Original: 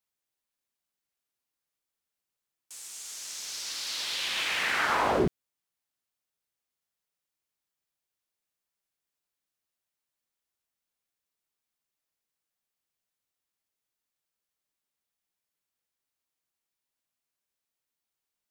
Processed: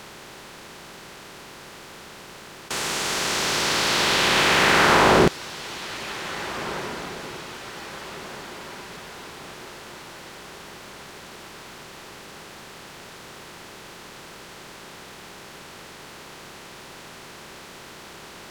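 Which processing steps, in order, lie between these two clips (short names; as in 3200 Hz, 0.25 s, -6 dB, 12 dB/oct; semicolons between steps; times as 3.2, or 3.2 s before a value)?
per-bin compression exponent 0.4; on a send: diffused feedback echo 1.716 s, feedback 46%, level -14.5 dB; on the sum: gain +5.5 dB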